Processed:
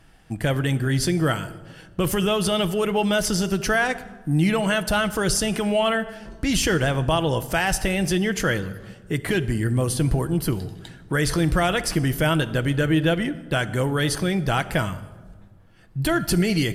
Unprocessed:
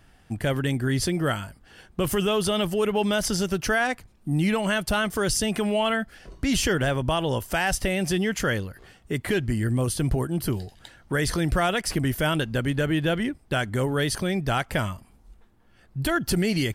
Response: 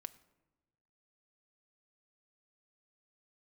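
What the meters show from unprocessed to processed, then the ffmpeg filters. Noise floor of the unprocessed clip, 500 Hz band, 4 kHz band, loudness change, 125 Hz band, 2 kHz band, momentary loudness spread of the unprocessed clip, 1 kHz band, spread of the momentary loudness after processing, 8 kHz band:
-57 dBFS, +2.0 dB, +2.0 dB, +2.5 dB, +3.5 dB, +2.5 dB, 7 LU, +2.0 dB, 8 LU, +2.5 dB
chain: -filter_complex "[1:a]atrim=start_sample=2205,asetrate=27342,aresample=44100[s0];[0:a][s0]afir=irnorm=-1:irlink=0,volume=1.68"

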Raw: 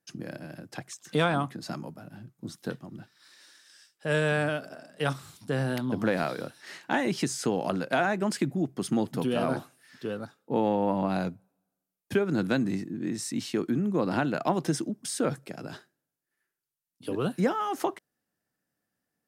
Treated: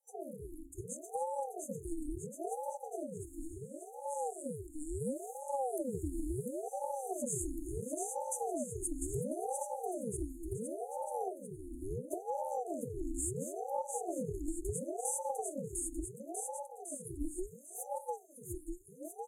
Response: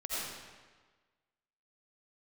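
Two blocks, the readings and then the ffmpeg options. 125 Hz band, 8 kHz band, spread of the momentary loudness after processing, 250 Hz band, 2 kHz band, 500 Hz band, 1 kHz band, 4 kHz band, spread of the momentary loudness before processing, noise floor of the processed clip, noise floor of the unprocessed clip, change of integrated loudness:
-12.0 dB, +1.0 dB, 9 LU, -12.5 dB, under -40 dB, -8.0 dB, -6.5 dB, under -40 dB, 15 LU, -54 dBFS, under -85 dBFS, -10.5 dB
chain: -filter_complex "[0:a]afftfilt=real='re*(1-between(b*sr/4096,190,6600))':imag='im*(1-between(b*sr/4096,190,6600))':win_size=4096:overlap=0.75,equalizer=f=580:t=o:w=2:g=5.5,bandreject=f=50:t=h:w=6,bandreject=f=100:t=h:w=6,bandreject=f=150:t=h:w=6,bandreject=f=200:t=h:w=6,bandreject=f=250:t=h:w=6,bandreject=f=300:t=h:w=6,bandreject=f=350:t=h:w=6,bandreject=f=400:t=h:w=6,bandreject=f=450:t=h:w=6,asplit=2[s0][s1];[s1]aecho=0:1:700|1295|1801|2231|2596:0.631|0.398|0.251|0.158|0.1[s2];[s0][s2]amix=inputs=2:normalize=0,acompressor=threshold=0.02:ratio=4,equalizer=f=100:t=o:w=0.67:g=7,equalizer=f=400:t=o:w=0.67:g=12,equalizer=f=1600:t=o:w=0.67:g=-9,equalizer=f=4000:t=o:w=0.67:g=7,equalizer=f=10000:t=o:w=0.67:g=7,aeval=exprs='val(0)*sin(2*PI*430*n/s+430*0.65/0.72*sin(2*PI*0.72*n/s))':c=same"

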